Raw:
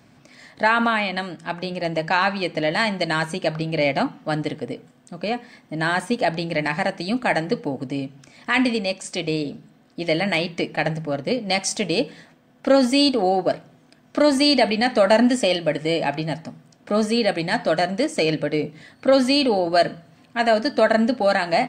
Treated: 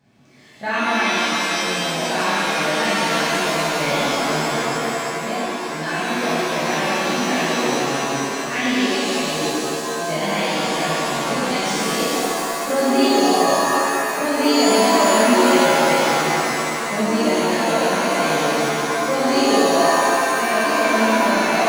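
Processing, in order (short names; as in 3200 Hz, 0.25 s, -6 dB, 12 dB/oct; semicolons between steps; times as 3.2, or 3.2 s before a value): median filter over 3 samples; shimmer reverb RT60 3.2 s, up +7 st, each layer -2 dB, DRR -11.5 dB; gain -12.5 dB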